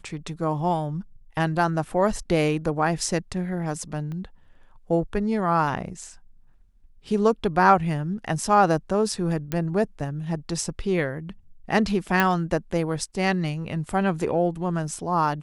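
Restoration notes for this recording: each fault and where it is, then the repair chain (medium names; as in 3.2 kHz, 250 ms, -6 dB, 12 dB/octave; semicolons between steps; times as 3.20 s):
4.12 s: pop -25 dBFS
9.52 s: pop -13 dBFS
12.20 s: pop -7 dBFS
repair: de-click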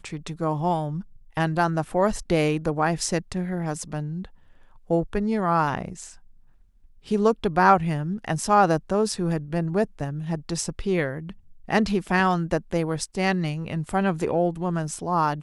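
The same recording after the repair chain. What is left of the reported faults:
4.12 s: pop
9.52 s: pop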